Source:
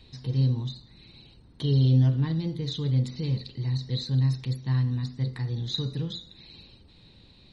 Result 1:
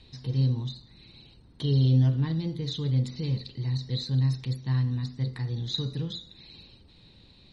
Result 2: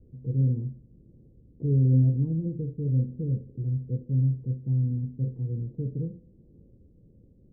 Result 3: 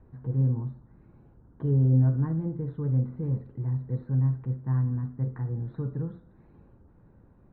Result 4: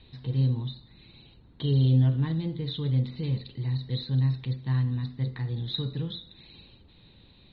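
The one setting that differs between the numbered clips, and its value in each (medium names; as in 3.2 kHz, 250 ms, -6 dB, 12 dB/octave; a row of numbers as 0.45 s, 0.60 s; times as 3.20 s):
Chebyshev low-pass, frequency: 11 kHz, 520 Hz, 1.5 kHz, 3.8 kHz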